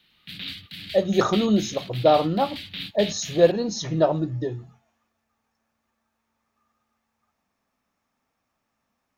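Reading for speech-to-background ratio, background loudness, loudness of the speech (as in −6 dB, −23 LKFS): 12.5 dB, −35.5 LKFS, −23.0 LKFS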